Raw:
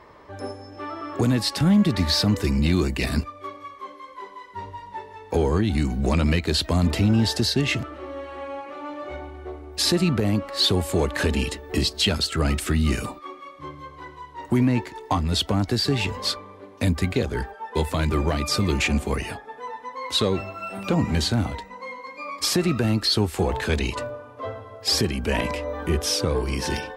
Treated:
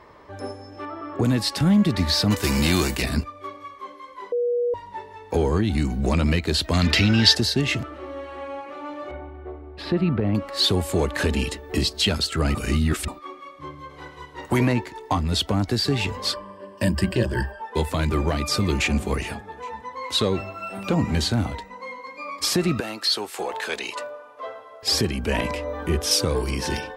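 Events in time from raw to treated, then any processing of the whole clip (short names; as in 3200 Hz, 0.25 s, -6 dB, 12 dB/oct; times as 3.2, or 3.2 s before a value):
0.85–1.25 high shelf 3000 Hz -11.5 dB
2.3–3.01 spectral whitening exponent 0.6
4.32–4.74 bleep 482 Hz -19.5 dBFS
6.73–7.35 band shelf 2900 Hz +12 dB 2.4 oct
9.11–10.35 air absorption 440 m
12.55–13.08 reverse
13.89–14.72 spectral limiter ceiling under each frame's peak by 13 dB
16.33–17.62 ripple EQ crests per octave 1.3, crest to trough 15 dB
18.57–18.99 echo throw 0.41 s, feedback 30%, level -16 dB
22.8–24.83 HPF 540 Hz
26.11–26.51 high shelf 4900 Hz +9 dB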